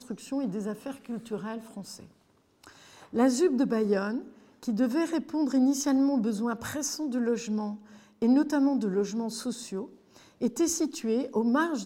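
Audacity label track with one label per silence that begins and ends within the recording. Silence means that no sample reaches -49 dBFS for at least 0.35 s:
2.110000	2.640000	silence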